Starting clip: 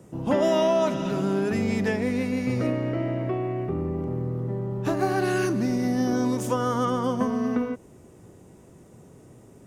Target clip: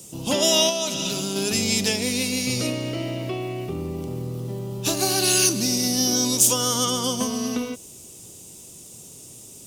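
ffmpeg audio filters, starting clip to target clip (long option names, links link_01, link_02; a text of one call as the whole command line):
ffmpeg -i in.wav -filter_complex "[0:a]asettb=1/sr,asplit=3[link_01][link_02][link_03];[link_01]atrim=end=0.694[link_04];[link_02]atrim=start=0.69:end=1.36,asetpts=PTS-STARTPTS,afade=type=in:duration=0.004:curve=qsin,afade=type=out:start_time=0.666:duration=0.004:curve=qsin,acompressor=threshold=-24dB:ratio=5[link_05];[link_03]atrim=start=1.356[link_06];[link_04][link_05]acrossfade=duration=0.004:curve1=hsin:curve2=qsin[link_07];[link_07][link_06]acrossfade=duration=0.004:curve1=qsin:curve2=hsin,aexciter=amount=10.1:drive=6.3:freq=2700,volume=-1.5dB" out.wav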